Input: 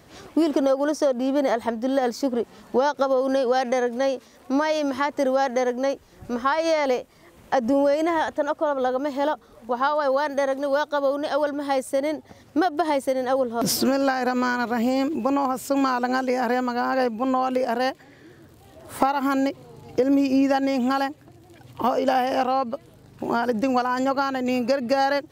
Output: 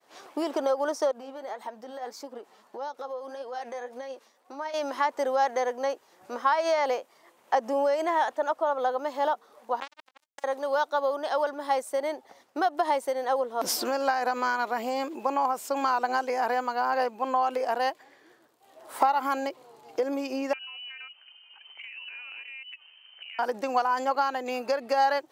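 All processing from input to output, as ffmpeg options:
ffmpeg -i in.wav -filter_complex "[0:a]asettb=1/sr,asplit=3[link_01][link_02][link_03];[link_01]atrim=end=1.114[link_04];[link_02]atrim=start=1.11:end=4.74,asetpts=PTS-STARTPTS,afade=type=in:duration=0.004:curve=qsin,afade=type=out:start_time=3.626:duration=0.004:curve=qsin,acompressor=threshold=-25dB:ratio=5:attack=3.2:release=140:knee=1:detection=peak,flanger=delay=3.1:depth=6.5:regen=54:speed=1.7:shape=sinusoidal[link_05];[link_03]atrim=start=4.736[link_06];[link_04][link_05]acrossfade=duration=0.004:curve1=hsin:curve2=qsin[link_07];[link_07][link_06]acrossfade=duration=0.004:curve1=qsin:curve2=hsin,asettb=1/sr,asplit=3[link_08][link_09][link_10];[link_08]atrim=end=9.804[link_11];[link_09]atrim=start=9.8:end=10.44,asetpts=PTS-STARTPTS,afade=type=in:duration=0.004:curve=qsin,afade=type=out:start_time=0.636:duration=0.004:curve=qsin,lowshelf=frequency=190:gain=8.5,acrossover=split=390|1500[link_12][link_13][link_14];[link_12]acompressor=threshold=-43dB:ratio=4[link_15];[link_13]acompressor=threshold=-28dB:ratio=4[link_16];[link_14]acompressor=threshold=-32dB:ratio=4[link_17];[link_15][link_16][link_17]amix=inputs=3:normalize=0,acrusher=bits=2:mix=0:aa=0.5[link_18];[link_10]atrim=start=10.436[link_19];[link_11][link_18]acrossfade=duration=0.004:curve1=hsin:curve2=qsin[link_20];[link_20][link_19]acrossfade=duration=0.004:curve1=qsin:curve2=hsin,asettb=1/sr,asplit=3[link_21][link_22][link_23];[link_21]atrim=end=20.534[link_24];[link_22]atrim=start=20.53:end=23.39,asetpts=PTS-STARTPTS,afade=type=in:duration=0.004:curve=qsin,afade=type=out:start_time=2.856:duration=0.004:curve=qsin,lowpass=frequency=2700:width_type=q:width=0.5098,lowpass=frequency=2700:width_type=q:width=0.6013,lowpass=frequency=2700:width_type=q:width=0.9,lowpass=frequency=2700:width_type=q:width=2.563,afreqshift=-3200,acompressor=threshold=-36dB:ratio=6:attack=3.2:release=140:knee=1:detection=peak,bandreject=frequency=50:width_type=h:width=6,bandreject=frequency=100:width_type=h:width=6,bandreject=frequency=150:width_type=h:width=6,bandreject=frequency=200:width_type=h:width=6,bandreject=frequency=250:width_type=h:width=6,bandreject=frequency=300:width_type=h:width=6,bandreject=frequency=350:width_type=h:width=6[link_25];[link_23]atrim=start=23.386[link_26];[link_24][link_25]acrossfade=duration=0.004:curve1=hsin:curve2=qsin[link_27];[link_27][link_26]acrossfade=duration=0.004:curve1=qsin:curve2=hsin,highpass=450,agate=range=-33dB:threshold=-50dB:ratio=3:detection=peak,equalizer=frequency=900:width_type=o:width=0.87:gain=5,volume=-4.5dB" out.wav

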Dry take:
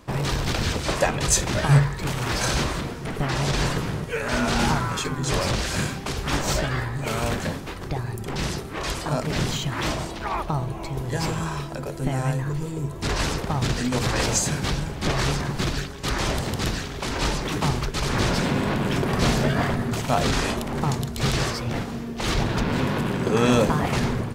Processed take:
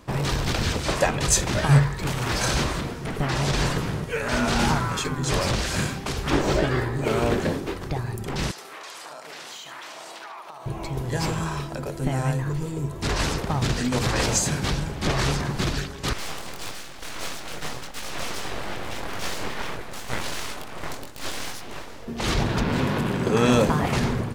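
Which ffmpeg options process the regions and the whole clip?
ffmpeg -i in.wav -filter_complex "[0:a]asettb=1/sr,asplit=3[link_01][link_02][link_03];[link_01]atrim=end=6.304[link_04];[link_02]atrim=start=6.3:end=7.78,asetpts=PTS-STARTPTS,afade=type=in:duration=0.004:curve=qsin,afade=type=out:start_time=1.476:duration=0.004:curve=qsin,acrossover=split=4100[link_05][link_06];[link_06]acompressor=threshold=-40dB:ratio=4:attack=1:release=60[link_07];[link_05][link_07]amix=inputs=2:normalize=0,equalizer=frequency=370:width=1.4:gain=9.5[link_08];[link_03]atrim=start=7.776[link_09];[link_04][link_08]acrossfade=duration=0.004:curve1=hsin:curve2=qsin[link_10];[link_10][link_09]acrossfade=duration=0.004:curve1=qsin:curve2=hsin,asettb=1/sr,asplit=3[link_11][link_12][link_13];[link_11]atrim=end=8.514[link_14];[link_12]atrim=start=8.51:end=10.66,asetpts=PTS-STARTPTS,afade=type=in:duration=0.004:curve=qsin,afade=type=out:start_time=2.146:duration=0.004:curve=qsin,highpass=680,acompressor=threshold=-36dB:ratio=12:attack=3.2:release=140:knee=1:detection=peak,aecho=1:1:73:0.473,atrim=end_sample=94815[link_15];[link_13]atrim=start=10.656[link_16];[link_14][link_15]acrossfade=duration=0.004:curve1=hsin:curve2=qsin[link_17];[link_17][link_16]acrossfade=duration=0.004:curve1=qsin:curve2=hsin,asettb=1/sr,asplit=3[link_18][link_19][link_20];[link_18]atrim=end=16.134[link_21];[link_19]atrim=start=16.13:end=22.08,asetpts=PTS-STARTPTS,afade=type=in:duration=0.004:curve=qsin,afade=type=out:start_time=5.946:duration=0.004:curve=qsin,highpass=frequency=260:poles=1,flanger=delay=19:depth=6.1:speed=1.6,aeval=exprs='abs(val(0))':channel_layout=same[link_22];[link_20]atrim=start=22.076[link_23];[link_21][link_22]acrossfade=duration=0.004:curve1=hsin:curve2=qsin[link_24];[link_24][link_23]acrossfade=duration=0.004:curve1=qsin:curve2=hsin" out.wav

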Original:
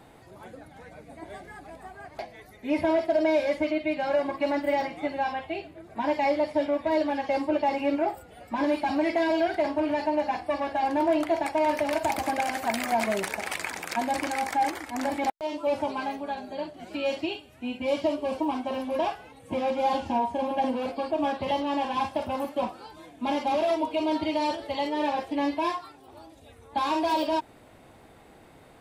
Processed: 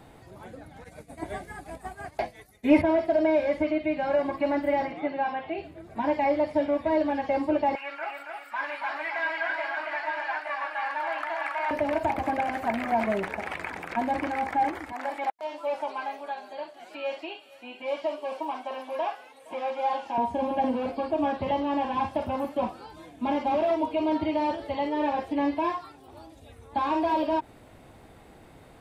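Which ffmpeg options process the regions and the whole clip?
ffmpeg -i in.wav -filter_complex "[0:a]asettb=1/sr,asplit=3[link_01][link_02][link_03];[link_01]atrim=end=0.844[link_04];[link_02]atrim=start=0.84:end=2.82,asetpts=PTS-STARTPTS,afade=type=in:duration=0.004:curve=qsin,afade=type=out:start_time=1.976:duration=0.004:curve=qsin,agate=range=-33dB:threshold=-40dB:ratio=3:release=100:detection=peak,equalizer=frequency=10000:width=0.47:gain=13.5,acontrast=76[link_05];[link_03]atrim=start=2.816[link_06];[link_04][link_05]acrossfade=duration=0.004:curve1=hsin:curve2=qsin[link_07];[link_07][link_06]acrossfade=duration=0.004:curve1=qsin:curve2=hsin,asettb=1/sr,asplit=3[link_08][link_09][link_10];[link_08]atrim=end=4.924[link_11];[link_09]atrim=start=4.92:end=5.58,asetpts=PTS-STARTPTS,afade=type=in:duration=0.004:curve=qsin,afade=type=out:start_time=0.656:duration=0.004:curve=qsin,highpass=180,lowpass=3800,acompressor=mode=upward:threshold=-33dB:ratio=2.5:attack=3.2:release=140:knee=2.83:detection=peak[link_12];[link_10]atrim=start=5.576[link_13];[link_11][link_12]acrossfade=duration=0.004:curve1=hsin:curve2=qsin[link_14];[link_14][link_13]acrossfade=duration=0.004:curve1=qsin:curve2=hsin,asettb=1/sr,asplit=3[link_15][link_16][link_17];[link_15]atrim=end=7.754[link_18];[link_16]atrim=start=7.75:end=11.71,asetpts=PTS-STARTPTS,afade=type=in:duration=0.004:curve=qsin,afade=type=out:start_time=3.956:duration=0.004:curve=qsin,highpass=frequency=1400:width_type=q:width=2.2,aecho=1:1:160|277|538|874:0.112|0.596|0.237|0.473,atrim=end_sample=174636[link_19];[link_17]atrim=start=11.706[link_20];[link_18][link_19]acrossfade=duration=0.004:curve1=hsin:curve2=qsin[link_21];[link_21][link_20]acrossfade=duration=0.004:curve1=qsin:curve2=hsin,asettb=1/sr,asplit=3[link_22][link_23][link_24];[link_22]atrim=end=14.924[link_25];[link_23]atrim=start=14.92:end=20.18,asetpts=PTS-STARTPTS,afade=type=in:duration=0.004:curve=qsin,afade=type=out:start_time=5.256:duration=0.004:curve=qsin,highpass=620,aecho=1:1:467:0.0794,atrim=end_sample=231966[link_26];[link_24]atrim=start=20.176[link_27];[link_25][link_26]acrossfade=duration=0.004:curve1=hsin:curve2=qsin[link_28];[link_28][link_27]acrossfade=duration=0.004:curve1=qsin:curve2=hsin,acrossover=split=2700[link_29][link_30];[link_30]acompressor=threshold=-55dB:ratio=4:attack=1:release=60[link_31];[link_29][link_31]amix=inputs=2:normalize=0,lowshelf=frequency=150:gain=6" out.wav

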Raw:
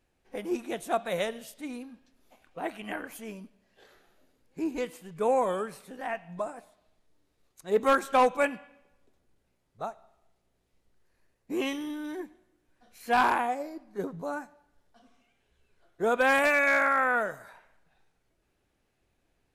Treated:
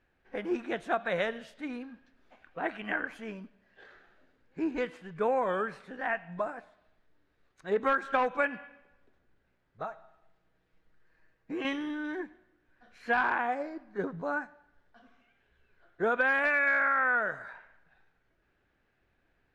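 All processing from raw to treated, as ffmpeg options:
ffmpeg -i in.wav -filter_complex "[0:a]asettb=1/sr,asplit=3[link_01][link_02][link_03];[link_01]atrim=end=9.824[link_04];[link_02]atrim=start=9.82:end=11.65,asetpts=PTS-STARTPTS,afade=type=in:duration=0.004:curve=qsin,afade=type=out:start_time=1.826:duration=0.004:curve=qsin,aecho=1:1:6.3:0.53,atrim=end_sample=80703,acompressor=threshold=-37dB:ratio=2:attack=3.2:release=140:knee=1:detection=peak[link_05];[link_03]atrim=start=11.646[link_06];[link_04][link_05]acrossfade=duration=0.004:curve1=hsin:curve2=qsin[link_07];[link_07][link_06]acrossfade=duration=0.004:curve1=qsin:curve2=hsin,lowpass=3600,equalizer=frequency=1600:width=2.3:gain=9,acompressor=threshold=-24dB:ratio=6" out.wav

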